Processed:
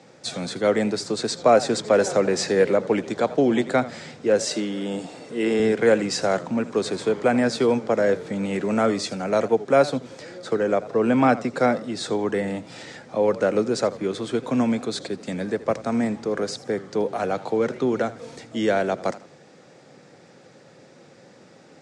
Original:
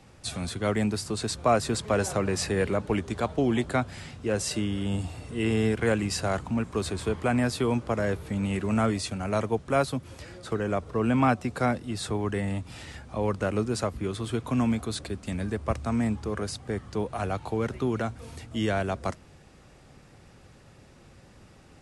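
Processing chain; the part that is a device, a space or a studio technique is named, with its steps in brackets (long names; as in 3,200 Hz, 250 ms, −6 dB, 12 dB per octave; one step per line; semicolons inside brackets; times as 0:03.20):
television speaker (loudspeaker in its box 160–7,600 Hz, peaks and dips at 210 Hz −3 dB, 510 Hz +6 dB, 1,100 Hz −5 dB, 2,800 Hz −6 dB)
0:04.46–0:05.60: high-pass filter 180 Hz 12 dB per octave
feedback echo with a swinging delay time 83 ms, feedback 34%, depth 148 cents, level −17 dB
level +5.5 dB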